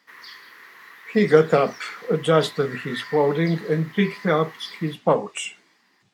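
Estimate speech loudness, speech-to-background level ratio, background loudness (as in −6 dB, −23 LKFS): −22.0 LKFS, 18.0 dB, −40.0 LKFS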